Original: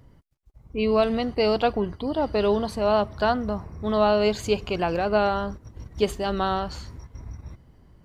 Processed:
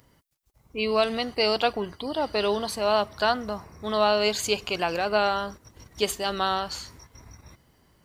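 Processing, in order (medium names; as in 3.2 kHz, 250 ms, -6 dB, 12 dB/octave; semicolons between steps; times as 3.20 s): tilt EQ +3 dB/octave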